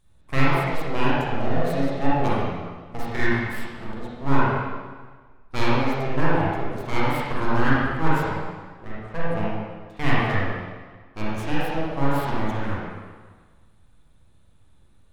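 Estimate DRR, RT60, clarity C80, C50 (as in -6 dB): -9.0 dB, 1.5 s, -1.0 dB, -5.5 dB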